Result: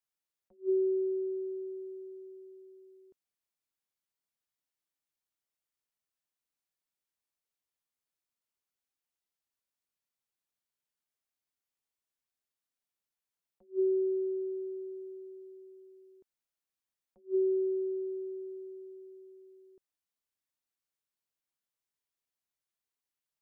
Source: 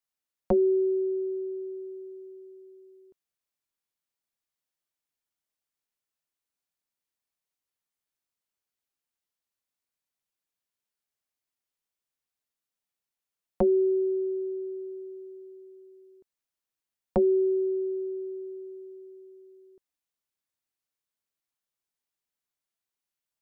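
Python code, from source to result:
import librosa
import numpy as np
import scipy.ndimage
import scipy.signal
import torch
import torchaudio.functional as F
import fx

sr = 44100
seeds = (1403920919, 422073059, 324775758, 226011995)

y = fx.attack_slew(x, sr, db_per_s=330.0)
y = F.gain(torch.from_numpy(y), -3.5).numpy()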